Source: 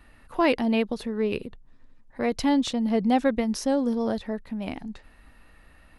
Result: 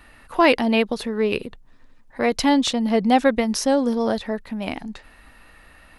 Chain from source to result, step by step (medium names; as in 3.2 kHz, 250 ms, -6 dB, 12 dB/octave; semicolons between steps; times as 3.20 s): bass shelf 420 Hz -7 dB; trim +8.5 dB